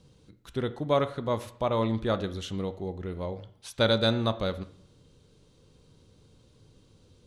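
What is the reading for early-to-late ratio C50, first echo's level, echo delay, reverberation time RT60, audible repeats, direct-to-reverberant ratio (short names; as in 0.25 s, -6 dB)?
15.0 dB, none, none, 0.60 s, none, 12.0 dB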